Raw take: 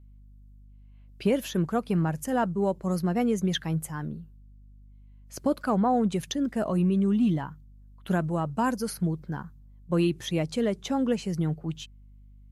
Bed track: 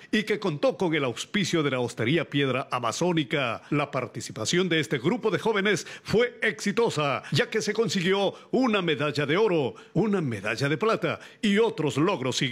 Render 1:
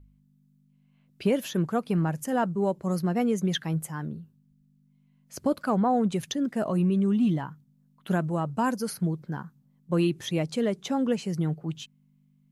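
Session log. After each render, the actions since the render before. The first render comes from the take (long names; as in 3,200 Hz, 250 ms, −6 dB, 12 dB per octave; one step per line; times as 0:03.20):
hum removal 50 Hz, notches 2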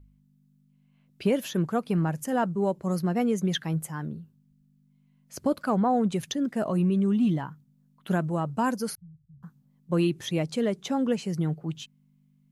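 0:08.95–0:09.43: inverse Chebyshev low-pass filter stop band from 550 Hz, stop band 80 dB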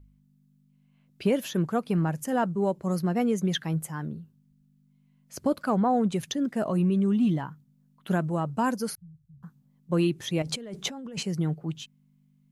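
0:10.42–0:11.23: compressor whose output falls as the input rises −36 dBFS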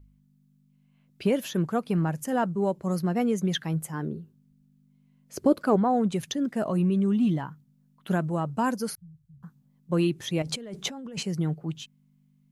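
0:03.93–0:05.76: parametric band 390 Hz +11 dB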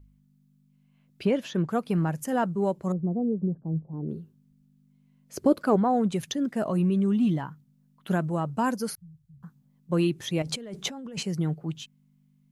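0:01.25–0:01.69: high-frequency loss of the air 85 metres
0:02.92–0:04.09: Gaussian smoothing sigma 14 samples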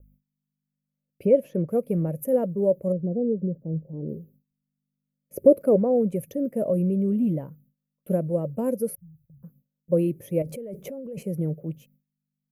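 noise gate with hold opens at −50 dBFS
drawn EQ curve 370 Hz 0 dB, 550 Hz +12 dB, 780 Hz −13 dB, 1,600 Hz −19 dB, 2,300 Hz −9 dB, 3,700 Hz −26 dB, 5,400 Hz −18 dB, 7,700 Hz −14 dB, 13,000 Hz +11 dB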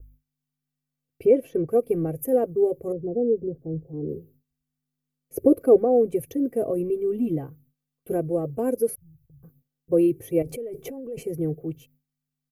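low-shelf EQ 190 Hz +4 dB
comb filter 2.6 ms, depth 98%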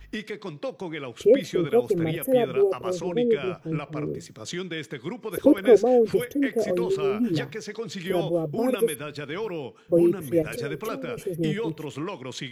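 mix in bed track −8.5 dB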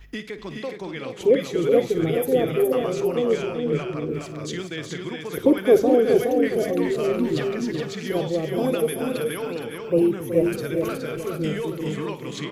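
multi-tap delay 56/247/373/419/464/826 ms −14.5/−18.5/−10/−4.5/−17.5/−13 dB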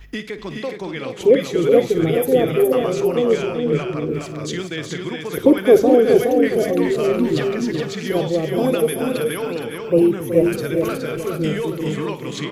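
level +4.5 dB
brickwall limiter −1 dBFS, peak gain reduction 1 dB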